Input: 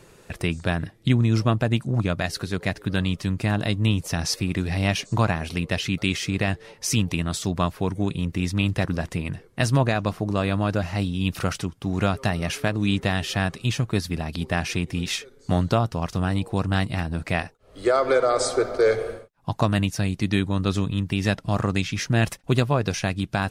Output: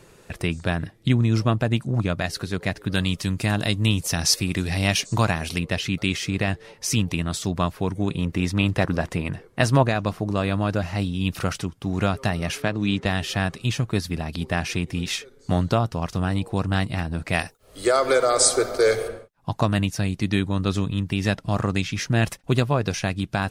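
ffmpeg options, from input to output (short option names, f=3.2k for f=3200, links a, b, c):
-filter_complex "[0:a]asettb=1/sr,asplit=3[a][b][c];[a]atrim=end=2.924[d];[b]atrim=start=2.92:end=5.59,asetpts=PTS-STARTPTS,afade=t=in:d=0.004:c=qsin,afade=t=out:st=2.666:d=0.004:c=qsin,highshelf=f=3.3k:g=9[e];[c]atrim=start=5.586[f];[d][e]acrossfade=d=0.004:c1=hsin:c2=qsin[g];[g][f]acrossfade=d=0.004:c1=qsin:c2=hsin,asettb=1/sr,asplit=3[h][i][j];[h]atrim=end=8.084[k];[i]atrim=start=8.08:end=9.83,asetpts=PTS-STARTPTS,afade=t=in:d=0.004:c=qsin,afade=t=out:st=1.746:d=0.004:c=qsin,equalizer=f=800:w=0.39:g=5[l];[j]atrim=start=9.826[m];[k][l]acrossfade=d=0.004:c1=hsin:c2=qsin[n];[n][m]acrossfade=d=0.004:c1=qsin:c2=hsin,asettb=1/sr,asplit=3[o][p][q];[o]atrim=end=12.624[r];[p]atrim=start=12.62:end=13.06,asetpts=PTS-STARTPTS,afade=t=in:d=0.004:c=qsin,afade=t=out:st=0.436:d=0.004:c=qsin,highpass=100,lowpass=6.5k[s];[q]atrim=start=13.056[t];[r][s]acrossfade=d=0.004:c1=hsin:c2=qsin[u];[u][t]acrossfade=d=0.004:c1=qsin:c2=hsin,asplit=3[v][w][x];[v]afade=t=out:st=17.32:d=0.02[y];[w]aemphasis=mode=production:type=75kf,afade=t=in:st=17.32:d=0.02,afade=t=out:st=19.07:d=0.02[z];[x]afade=t=in:st=19.07:d=0.02[aa];[y][z][aa]amix=inputs=3:normalize=0"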